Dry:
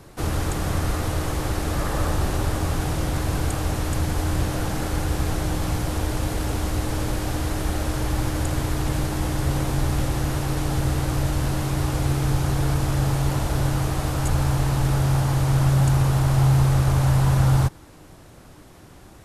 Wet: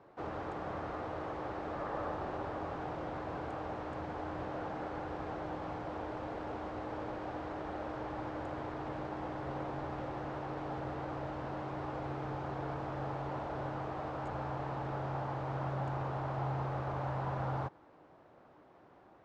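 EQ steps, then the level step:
resonant band-pass 740 Hz, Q 0.92
high-frequency loss of the air 120 metres
−6.5 dB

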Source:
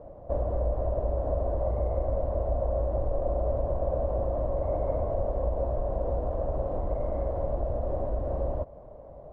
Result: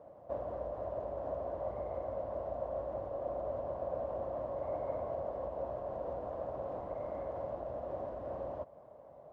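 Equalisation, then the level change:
high-pass filter 120 Hz 12 dB per octave
low-shelf EQ 360 Hz −10 dB
parametric band 470 Hz −4 dB 1.8 octaves
−1.0 dB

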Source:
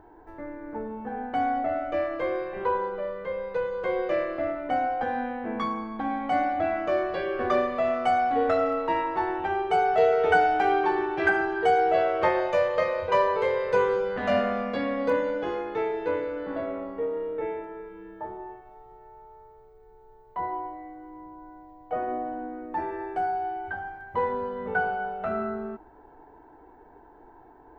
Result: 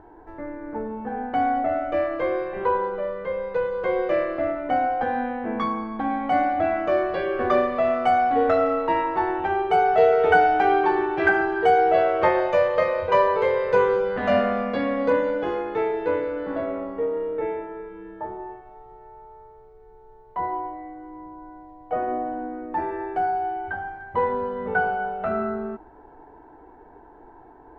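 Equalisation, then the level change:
low-pass filter 3,400 Hz 6 dB per octave
+4.0 dB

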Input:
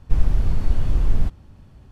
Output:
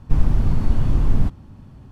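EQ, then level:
octave-band graphic EQ 125/250/1,000 Hz +6/+7/+5 dB
0.0 dB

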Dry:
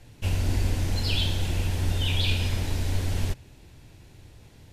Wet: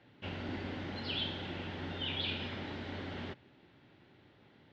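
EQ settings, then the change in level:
loudspeaker in its box 280–3,000 Hz, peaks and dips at 320 Hz −3 dB, 470 Hz −7 dB, 680 Hz −6 dB, 990 Hz −6 dB, 1,700 Hz −3 dB, 2,500 Hz −9 dB
0.0 dB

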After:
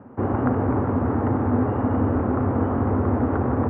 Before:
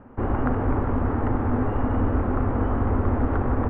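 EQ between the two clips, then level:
high-pass filter 90 Hz 24 dB per octave
high-shelf EQ 2,000 Hz −11.5 dB
+4.0 dB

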